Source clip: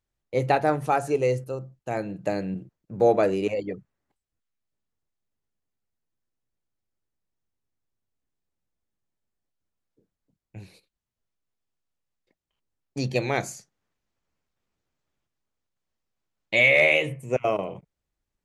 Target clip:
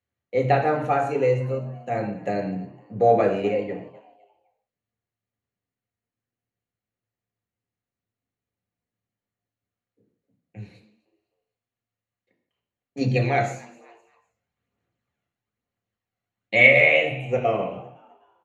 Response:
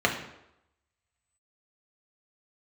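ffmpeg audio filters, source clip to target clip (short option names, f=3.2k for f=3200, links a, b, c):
-filter_complex "[0:a]asplit=4[a][b][c][d];[b]adelay=254,afreqshift=110,volume=-21dB[e];[c]adelay=508,afreqshift=220,volume=-29.9dB[f];[d]adelay=762,afreqshift=330,volume=-38.7dB[g];[a][e][f][g]amix=inputs=4:normalize=0[h];[1:a]atrim=start_sample=2205,afade=t=out:st=0.23:d=0.01,atrim=end_sample=10584[i];[h][i]afir=irnorm=-1:irlink=0,asettb=1/sr,asplit=3[j][k][l];[j]atrim=end=13.014[m];[k]atrim=start=13.01:end=16.81,asetpts=PTS-STARTPTS,afade=t=in:d=0.004:c=qsin,afade=t=out:st=3.796:d=0.004:c=qsin,aphaser=in_gain=1:out_gain=1:delay=1.5:decay=0.33:speed=1.1:type=sinusoidal[n];[l]atrim=start=16.806[o];[m][n]acrossfade=d=0.004:c1=hsin:c2=qsin[p];[p][o]acrossfade=d=0.004:c1=qsin:c2=hsin,volume=-13dB"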